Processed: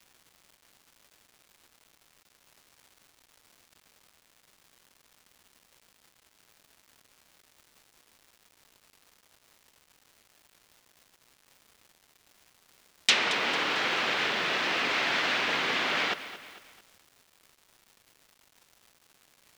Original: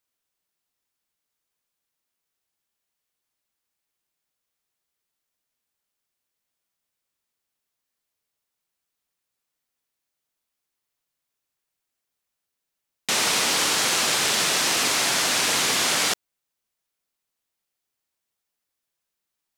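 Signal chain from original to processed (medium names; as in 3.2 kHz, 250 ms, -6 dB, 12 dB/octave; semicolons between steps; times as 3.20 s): frequency weighting D; low-pass that closes with the level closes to 1.1 kHz, closed at -9 dBFS; crackle 470 per s -43 dBFS; bit-crushed delay 224 ms, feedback 55%, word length 7-bit, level -13.5 dB; trim -3.5 dB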